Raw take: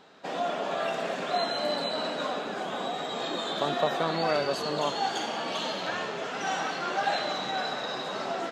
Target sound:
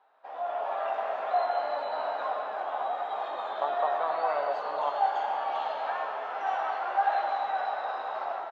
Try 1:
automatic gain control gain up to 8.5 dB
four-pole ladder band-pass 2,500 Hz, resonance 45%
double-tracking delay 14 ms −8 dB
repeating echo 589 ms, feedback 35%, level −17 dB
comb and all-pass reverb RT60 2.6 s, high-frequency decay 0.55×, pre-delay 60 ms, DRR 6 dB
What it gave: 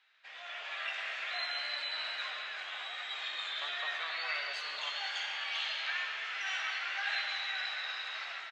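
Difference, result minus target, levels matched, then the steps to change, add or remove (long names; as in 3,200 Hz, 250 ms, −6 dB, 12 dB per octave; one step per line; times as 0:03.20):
1,000 Hz band −12.0 dB
change: four-pole ladder band-pass 960 Hz, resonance 45%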